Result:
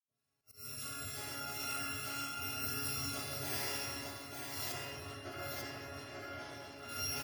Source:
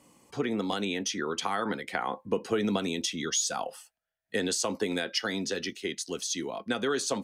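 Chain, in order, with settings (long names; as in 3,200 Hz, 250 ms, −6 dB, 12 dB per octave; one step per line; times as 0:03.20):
samples in bit-reversed order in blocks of 256 samples
high-pass filter 110 Hz 6 dB per octave
tuned comb filter 140 Hz, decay 1.1 s, harmonics all, mix 90%
convolution reverb RT60 3.5 s, pre-delay 76 ms
volume swells 152 ms
0:04.72–0:06.89: low-pass filter 2,900 Hz 6 dB per octave
gate on every frequency bin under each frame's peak −25 dB strong
multi-tap delay 129/188/391/893 ms −8.5/−12.5/−14.5/−3 dB
multiband upward and downward expander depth 40%
level +13 dB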